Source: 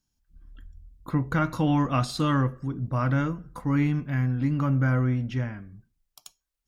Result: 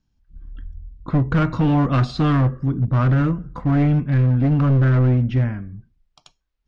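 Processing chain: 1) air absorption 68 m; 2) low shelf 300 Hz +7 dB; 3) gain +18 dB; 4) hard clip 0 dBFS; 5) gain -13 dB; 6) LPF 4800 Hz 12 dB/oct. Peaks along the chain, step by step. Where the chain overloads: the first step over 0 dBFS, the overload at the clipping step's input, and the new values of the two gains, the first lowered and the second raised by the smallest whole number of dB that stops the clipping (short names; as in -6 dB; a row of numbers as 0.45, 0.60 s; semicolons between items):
-12.5, -8.5, +9.5, 0.0, -13.0, -12.5 dBFS; step 3, 9.5 dB; step 3 +8 dB, step 5 -3 dB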